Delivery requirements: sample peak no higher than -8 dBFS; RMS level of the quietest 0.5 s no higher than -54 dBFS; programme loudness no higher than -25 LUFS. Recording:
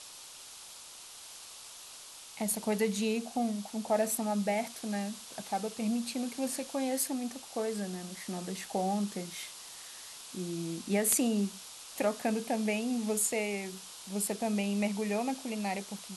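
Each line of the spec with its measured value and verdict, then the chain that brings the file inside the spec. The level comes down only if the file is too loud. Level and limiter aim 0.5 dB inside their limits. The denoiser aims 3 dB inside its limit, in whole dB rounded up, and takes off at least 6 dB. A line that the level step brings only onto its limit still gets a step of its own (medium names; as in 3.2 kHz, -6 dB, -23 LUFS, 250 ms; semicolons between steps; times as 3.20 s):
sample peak -13.5 dBFS: pass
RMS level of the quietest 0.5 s -49 dBFS: fail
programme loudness -33.0 LUFS: pass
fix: noise reduction 8 dB, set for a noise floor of -49 dBFS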